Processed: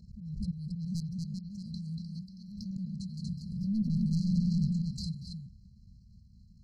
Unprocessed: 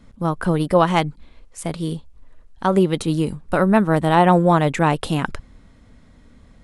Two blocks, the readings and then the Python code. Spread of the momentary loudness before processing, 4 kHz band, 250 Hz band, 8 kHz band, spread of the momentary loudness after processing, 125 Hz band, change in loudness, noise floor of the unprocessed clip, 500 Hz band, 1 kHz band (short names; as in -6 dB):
14 LU, -15.5 dB, -12.0 dB, under -15 dB, 15 LU, -10.0 dB, -15.5 dB, -50 dBFS, under -40 dB, under -40 dB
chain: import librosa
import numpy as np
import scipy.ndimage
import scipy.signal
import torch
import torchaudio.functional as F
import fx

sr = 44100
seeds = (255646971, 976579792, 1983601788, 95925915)

p1 = scipy.signal.sosfilt(scipy.signal.butter(2, 50.0, 'highpass', fs=sr, output='sos'), x)
p2 = fx.high_shelf(p1, sr, hz=3300.0, db=4.0)
p3 = fx.level_steps(p2, sr, step_db=17)
p4 = fx.auto_swell(p3, sr, attack_ms=194.0)
p5 = fx.echo_pitch(p4, sr, ms=494, semitones=2, count=3, db_per_echo=-6.0)
p6 = fx.air_absorb(p5, sr, metres=180.0)
p7 = p6 + fx.echo_single(p6, sr, ms=237, db=-3.5, dry=0)
p8 = 10.0 ** (-16.0 / 20.0) * np.tanh(p7 / 10.0 ** (-16.0 / 20.0))
p9 = fx.brickwall_bandstop(p8, sr, low_hz=220.0, high_hz=4000.0)
p10 = fx.pre_swell(p9, sr, db_per_s=45.0)
y = F.gain(torch.from_numpy(p10), -3.0).numpy()